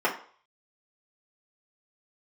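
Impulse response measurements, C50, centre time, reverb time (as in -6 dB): 9.5 dB, 19 ms, 0.50 s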